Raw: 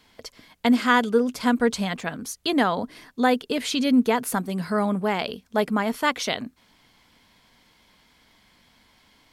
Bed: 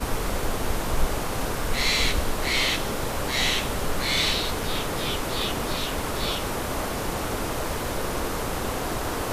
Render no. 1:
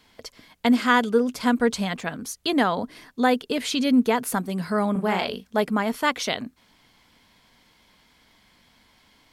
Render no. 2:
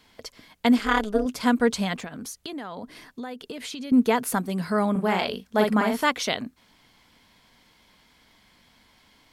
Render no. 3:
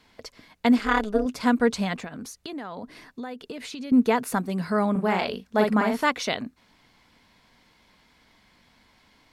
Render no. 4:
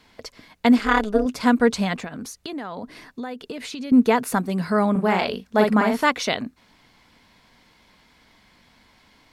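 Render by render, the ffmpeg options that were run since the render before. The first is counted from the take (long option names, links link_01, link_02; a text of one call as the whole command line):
ffmpeg -i in.wav -filter_complex "[0:a]asettb=1/sr,asplit=3[link_01][link_02][link_03];[link_01]atrim=end=4.924[link_04];[link_02]atrim=start=4.92:end=5.5,asetpts=PTS-STARTPTS,afade=type=in:duration=0.004:curve=qsin,afade=type=out:start_time=0.576:duration=0.004:curve=qsin,asplit=2[link_05][link_06];[link_06]adelay=37,volume=-4dB[link_07];[link_05][link_07]amix=inputs=2:normalize=0,atrim=end_sample=25578[link_08];[link_03]atrim=start=5.496[link_09];[link_04][link_08]acrossfade=duration=0.004:curve1=hsin:curve2=qsin[link_10];[link_10][link_09]acrossfade=duration=0.004:curve1=qsin:curve2=hsin" out.wav
ffmpeg -i in.wav -filter_complex "[0:a]asettb=1/sr,asplit=3[link_01][link_02][link_03];[link_01]atrim=end=0.784[link_04];[link_02]atrim=start=0.78:end=1.26,asetpts=PTS-STARTPTS,afade=type=in:duration=0.004:curve=qsin,afade=type=out:start_time=0.476:duration=0.004:curve=qsin,tremolo=f=210:d=0.889[link_05];[link_03]atrim=start=1.256[link_06];[link_04][link_05]acrossfade=duration=0.004:curve1=hsin:curve2=qsin[link_07];[link_07][link_06]acrossfade=duration=0.004:curve1=qsin:curve2=hsin,asettb=1/sr,asplit=3[link_08][link_09][link_10];[link_08]atrim=end=2.044[link_11];[link_09]atrim=start=2.04:end=3.92,asetpts=PTS-STARTPTS,afade=type=in:duration=0.004:curve=qsin,afade=type=out:start_time=1.876:duration=0.004:curve=qsin,acompressor=threshold=-32dB:ratio=8:attack=3.2:release=140:knee=1:detection=peak[link_12];[link_10]atrim=start=3.916[link_13];[link_11][link_12]acrossfade=duration=0.004:curve1=hsin:curve2=qsin[link_14];[link_14][link_13]acrossfade=duration=0.004:curve1=qsin:curve2=hsin,asettb=1/sr,asplit=3[link_15][link_16][link_17];[link_15]atrim=end=5.474[link_18];[link_16]atrim=start=5.47:end=6.04,asetpts=PTS-STARTPTS,afade=type=in:duration=0.004:curve=qsin,afade=type=out:start_time=0.566:duration=0.004:curve=qsin,asplit=2[link_19][link_20];[link_20]adelay=47,volume=-3dB[link_21];[link_19][link_21]amix=inputs=2:normalize=0,atrim=end_sample=25137[link_22];[link_17]atrim=start=6.036[link_23];[link_18][link_22]acrossfade=duration=0.004:curve1=hsin:curve2=qsin[link_24];[link_24][link_23]acrossfade=duration=0.004:curve1=qsin:curve2=hsin" out.wav
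ffmpeg -i in.wav -af "highshelf=frequency=7700:gain=-8,bandreject=frequency=3200:width=15" out.wav
ffmpeg -i in.wav -af "volume=3.5dB" out.wav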